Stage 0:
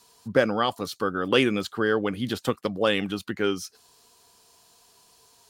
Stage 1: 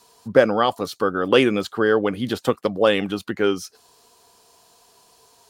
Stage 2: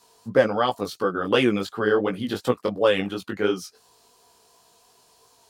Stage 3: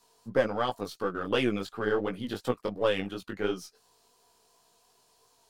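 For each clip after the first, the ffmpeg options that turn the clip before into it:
ffmpeg -i in.wav -af "equalizer=frequency=600:width_type=o:width=2.1:gain=5.5,volume=1.5dB" out.wav
ffmpeg -i in.wav -af "flanger=delay=16:depth=4.9:speed=2.8" out.wav
ffmpeg -i in.wav -af "aeval=exprs='if(lt(val(0),0),0.708*val(0),val(0))':channel_layout=same,volume=-6dB" out.wav

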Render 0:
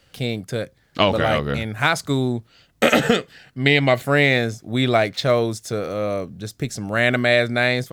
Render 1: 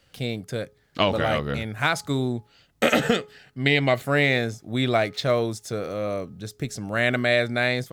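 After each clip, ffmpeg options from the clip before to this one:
ffmpeg -i in.wav -af "bandreject=frequency=420.2:width_type=h:width=4,bandreject=frequency=840.4:width_type=h:width=4,bandreject=frequency=1260.6:width_type=h:width=4,volume=-4dB" out.wav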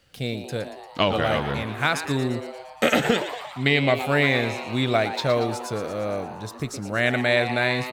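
ffmpeg -i in.wav -filter_complex "[0:a]asplit=9[link_01][link_02][link_03][link_04][link_05][link_06][link_07][link_08][link_09];[link_02]adelay=116,afreqshift=130,volume=-11dB[link_10];[link_03]adelay=232,afreqshift=260,volume=-14.9dB[link_11];[link_04]adelay=348,afreqshift=390,volume=-18.8dB[link_12];[link_05]adelay=464,afreqshift=520,volume=-22.6dB[link_13];[link_06]adelay=580,afreqshift=650,volume=-26.5dB[link_14];[link_07]adelay=696,afreqshift=780,volume=-30.4dB[link_15];[link_08]adelay=812,afreqshift=910,volume=-34.3dB[link_16];[link_09]adelay=928,afreqshift=1040,volume=-38.1dB[link_17];[link_01][link_10][link_11][link_12][link_13][link_14][link_15][link_16][link_17]amix=inputs=9:normalize=0" out.wav

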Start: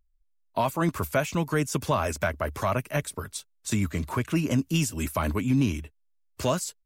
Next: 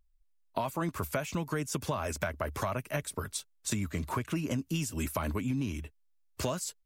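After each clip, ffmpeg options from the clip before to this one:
ffmpeg -i in.wav -af "acompressor=threshold=-29dB:ratio=6" out.wav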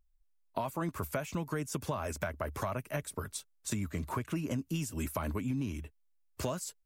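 ffmpeg -i in.wav -af "equalizer=frequency=3900:width=0.61:gain=-3.5,volume=-2dB" out.wav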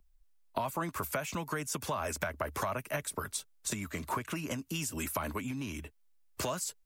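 ffmpeg -i in.wav -filter_complex "[0:a]acrossover=split=180|700[link_01][link_02][link_03];[link_01]acompressor=threshold=-52dB:ratio=4[link_04];[link_02]acompressor=threshold=-46dB:ratio=4[link_05];[link_03]acompressor=threshold=-38dB:ratio=4[link_06];[link_04][link_05][link_06]amix=inputs=3:normalize=0,volume=6dB" out.wav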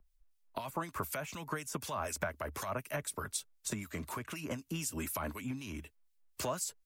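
ffmpeg -i in.wav -filter_complex "[0:a]acrossover=split=2100[link_01][link_02];[link_01]aeval=exprs='val(0)*(1-0.7/2+0.7/2*cos(2*PI*4*n/s))':channel_layout=same[link_03];[link_02]aeval=exprs='val(0)*(1-0.7/2-0.7/2*cos(2*PI*4*n/s))':channel_layout=same[link_04];[link_03][link_04]amix=inputs=2:normalize=0" out.wav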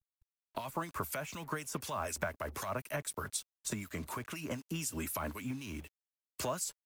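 ffmpeg -i in.wav -af "acrusher=bits=8:mix=0:aa=0.5" out.wav

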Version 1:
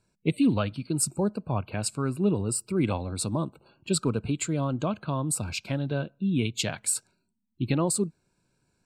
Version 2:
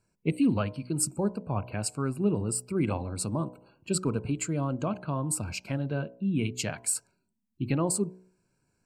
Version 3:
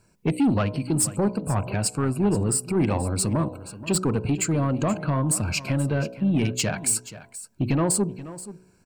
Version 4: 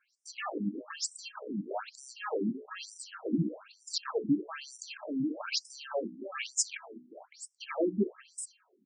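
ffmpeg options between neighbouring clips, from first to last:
ffmpeg -i in.wav -af "equalizer=frequency=3600:width=5.2:gain=-15,bandreject=frequency=61.68:width_type=h:width=4,bandreject=frequency=123.36:width_type=h:width=4,bandreject=frequency=185.04:width_type=h:width=4,bandreject=frequency=246.72:width_type=h:width=4,bandreject=frequency=308.4:width_type=h:width=4,bandreject=frequency=370.08:width_type=h:width=4,bandreject=frequency=431.76:width_type=h:width=4,bandreject=frequency=493.44:width_type=h:width=4,bandreject=frequency=555.12:width_type=h:width=4,bandreject=frequency=616.8:width_type=h:width=4,bandreject=frequency=678.48:width_type=h:width=4,bandreject=frequency=740.16:width_type=h:width=4,bandreject=frequency=801.84:width_type=h:width=4,bandreject=frequency=863.52:width_type=h:width=4,bandreject=frequency=925.2:width_type=h:width=4,bandreject=frequency=986.88:width_type=h:width=4,bandreject=frequency=1048.56:width_type=h:width=4,volume=-1.5dB" out.wav
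ffmpeg -i in.wav -filter_complex "[0:a]asplit=2[link_01][link_02];[link_02]acompressor=threshold=-36dB:ratio=6,volume=1.5dB[link_03];[link_01][link_03]amix=inputs=2:normalize=0,asoftclip=type=tanh:threshold=-21dB,aecho=1:1:479:0.168,volume=5.5dB" out.wav
ffmpeg -i in.wav -filter_complex "[0:a]acrossover=split=270[link_01][link_02];[link_01]acrusher=samples=30:mix=1:aa=0.000001[link_03];[link_03][link_02]amix=inputs=2:normalize=0,afftfilt=real='re*between(b*sr/1024,240*pow(7200/240,0.5+0.5*sin(2*PI*1.1*pts/sr))/1.41,240*pow(7200/240,0.5+0.5*sin(2*PI*1.1*pts/sr))*1.41)':imag='im*between(b*sr/1024,240*pow(7200/240,0.5+0.5*sin(2*PI*1.1*pts/sr))/1.41,240*pow(7200/240,0.5+0.5*sin(2*PI*1.1*pts/sr))*1.41)':win_size=1024:overlap=0.75" out.wav

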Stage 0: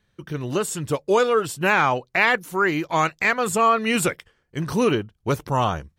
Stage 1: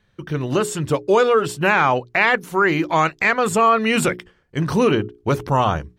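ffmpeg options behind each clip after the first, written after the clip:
ffmpeg -i in.wav -filter_complex "[0:a]highshelf=frequency=6300:gain=-9.5,bandreject=frequency=60:width_type=h:width=6,bandreject=frequency=120:width_type=h:width=6,bandreject=frequency=180:width_type=h:width=6,bandreject=frequency=240:width_type=h:width=6,bandreject=frequency=300:width_type=h:width=6,bandreject=frequency=360:width_type=h:width=6,bandreject=frequency=420:width_type=h:width=6,asplit=2[link_01][link_02];[link_02]alimiter=limit=-15.5dB:level=0:latency=1,volume=2.5dB[link_03];[link_01][link_03]amix=inputs=2:normalize=0,volume=-1.5dB" out.wav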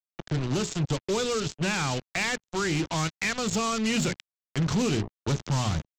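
ffmpeg -i in.wav -filter_complex "[0:a]aresample=16000,acrusher=bits=3:mix=0:aa=0.5,aresample=44100,acrossover=split=250|3000[link_01][link_02][link_03];[link_02]acompressor=threshold=-39dB:ratio=2[link_04];[link_01][link_04][link_03]amix=inputs=3:normalize=0,asoftclip=type=tanh:threshold=-19.5dB" out.wav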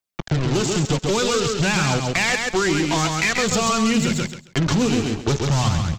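ffmpeg -i in.wav -filter_complex "[0:a]aphaser=in_gain=1:out_gain=1:delay=4.3:decay=0.34:speed=0.51:type=triangular,asplit=2[link_01][link_02];[link_02]aecho=0:1:135|270|405:0.562|0.112|0.0225[link_03];[link_01][link_03]amix=inputs=2:normalize=0,acompressor=threshold=-25dB:ratio=6,volume=9dB" out.wav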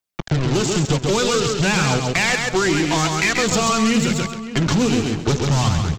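ffmpeg -i in.wav -filter_complex "[0:a]asplit=2[link_01][link_02];[link_02]adelay=571.4,volume=-13dB,highshelf=frequency=4000:gain=-12.9[link_03];[link_01][link_03]amix=inputs=2:normalize=0,volume=1.5dB" out.wav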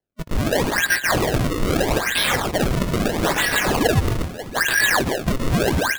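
ffmpeg -i in.wav -af "afftfilt=real='real(if(lt(b,272),68*(eq(floor(b/68),0)*3+eq(floor(b/68),1)*0+eq(floor(b/68),2)*1+eq(floor(b/68),3)*2)+mod(b,68),b),0)':imag='imag(if(lt(b,272),68*(eq(floor(b/68),0)*3+eq(floor(b/68),1)*0+eq(floor(b/68),2)*1+eq(floor(b/68),3)*2)+mod(b,68),b),0)':win_size=2048:overlap=0.75,flanger=delay=15.5:depth=3.8:speed=1.1,acrusher=samples=31:mix=1:aa=0.000001:lfo=1:lforange=49.6:lforate=0.78,volume=1.5dB" out.wav

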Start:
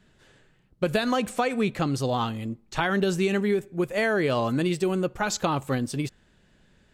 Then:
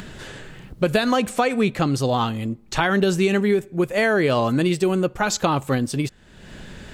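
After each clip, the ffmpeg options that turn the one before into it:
ffmpeg -i in.wav -af "acompressor=mode=upward:threshold=-28dB:ratio=2.5,volume=5dB" out.wav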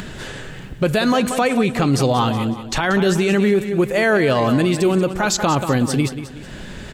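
ffmpeg -i in.wav -filter_complex "[0:a]asplit=2[link_01][link_02];[link_02]aecho=0:1:184|368|552|736:0.251|0.103|0.0422|0.0173[link_03];[link_01][link_03]amix=inputs=2:normalize=0,alimiter=level_in=13dB:limit=-1dB:release=50:level=0:latency=1,volume=-7.5dB" out.wav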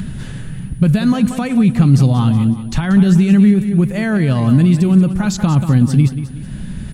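ffmpeg -i in.wav -af "aeval=exprs='val(0)+0.00708*sin(2*PI*9700*n/s)':channel_layout=same,lowshelf=frequency=280:width_type=q:width=1.5:gain=13.5,volume=-5.5dB" out.wav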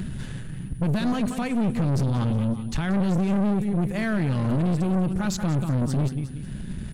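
ffmpeg -i in.wav -af "aeval=exprs='(tanh(6.31*val(0)+0.45)-tanh(0.45))/6.31':channel_layout=same,volume=-4.5dB" out.wav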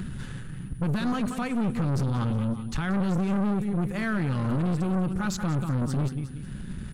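ffmpeg -i in.wav -af "equalizer=frequency=1300:width_type=o:width=0.57:gain=6,bandreject=frequency=640:width=12,volume=-3dB" out.wav

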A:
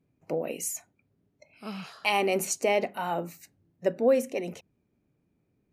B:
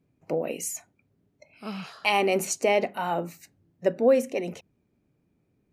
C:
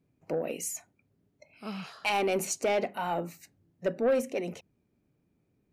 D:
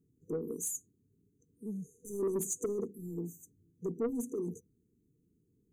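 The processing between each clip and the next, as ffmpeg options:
ffmpeg -i in.wav -af "highshelf=frequency=9500:gain=-5.5,volume=2.5dB" out.wav
ffmpeg -i in.wav -af "asoftclip=type=tanh:threshold=-17.5dB,volume=-2.5dB" out.wav
ffmpeg -i in.wav -af "afftfilt=real='re*(1-between(b*sr/4096,490,6000))':imag='im*(1-between(b*sr/4096,490,6000))':win_size=4096:overlap=0.75,asoftclip=type=tanh:threshold=-26dB" out.wav

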